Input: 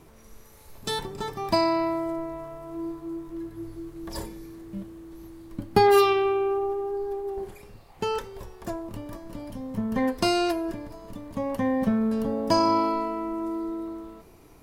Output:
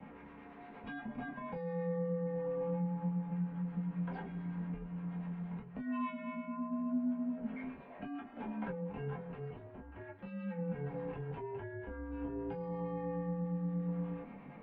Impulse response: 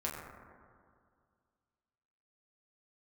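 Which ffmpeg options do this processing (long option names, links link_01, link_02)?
-filter_complex "[0:a]highpass=frequency=130:width=0.5412,highpass=frequency=130:width=1.3066,acompressor=threshold=-38dB:ratio=5,alimiter=level_in=9dB:limit=-24dB:level=0:latency=1:release=412,volume=-9dB,acrossover=split=850[link_01][link_02];[link_01]aeval=exprs='val(0)*(1-0.5/2+0.5/2*cos(2*PI*8.5*n/s))':channel_layout=same[link_03];[link_02]aeval=exprs='val(0)*(1-0.5/2-0.5/2*cos(2*PI*8.5*n/s))':channel_layout=same[link_04];[link_03][link_04]amix=inputs=2:normalize=0,asettb=1/sr,asplit=3[link_05][link_06][link_07];[link_05]atrim=end=9.134[link_08];[link_06]atrim=start=9.13:end=10.58,asetpts=PTS-STARTPTS,afade=type=in:duration=0.004:curve=qsin,afade=type=out:start_time=1.446:duration=0.004:curve=qsin,aeval=exprs='(tanh(126*val(0)+0.75)-tanh(0.75))/126':channel_layout=same[link_09];[link_07]atrim=start=10.576[link_10];[link_08][link_09]acrossfade=duration=0.004:curve1=hsin:curve2=qsin[link_11];[link_11][link_10]acrossfade=duration=0.004:curve1=qsin:curve2=hsin,afreqshift=25[link_12];[1:a]atrim=start_sample=2205,atrim=end_sample=3528,asetrate=74970,aresample=44100[link_13];[link_12][link_13]afir=irnorm=-1:irlink=0,highpass=frequency=280:width_type=q:width=0.5412,highpass=frequency=280:width_type=q:width=1.307,lowpass=frequency=2800:width_type=q:width=0.5176,lowpass=frequency=2800:width_type=q:width=0.7071,lowpass=frequency=2800:width_type=q:width=1.932,afreqshift=-180,volume=9.5dB"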